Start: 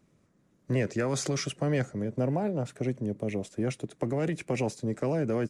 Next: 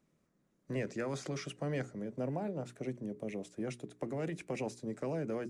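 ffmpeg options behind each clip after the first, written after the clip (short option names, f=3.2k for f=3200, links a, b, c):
-filter_complex "[0:a]equalizer=f=100:t=o:w=0.33:g=-13,bandreject=f=60:t=h:w=6,bandreject=f=120:t=h:w=6,bandreject=f=180:t=h:w=6,bandreject=f=240:t=h:w=6,bandreject=f=300:t=h:w=6,bandreject=f=360:t=h:w=6,bandreject=f=420:t=h:w=6,acrossover=split=3700[a][b];[b]alimiter=level_in=10.5dB:limit=-24dB:level=0:latency=1:release=116,volume=-10.5dB[c];[a][c]amix=inputs=2:normalize=0,volume=-7.5dB"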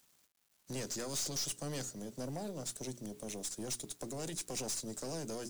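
-af "aexciter=amount=12.5:drive=5.4:freq=3.4k,aeval=exprs='(tanh(39.8*val(0)+0.4)-tanh(0.4))/39.8':c=same,acrusher=bits=9:mix=0:aa=0.000001,volume=-2dB"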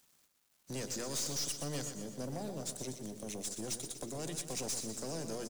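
-af "aecho=1:1:122|244|366|488|610|732:0.355|0.195|0.107|0.059|0.0325|0.0179"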